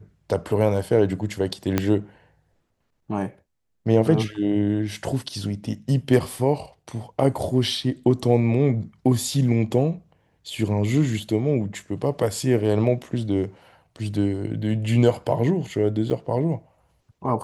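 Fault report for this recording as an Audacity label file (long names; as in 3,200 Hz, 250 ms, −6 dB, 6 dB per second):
1.780000	1.780000	click −6 dBFS
16.100000	16.110000	drop-out 5.2 ms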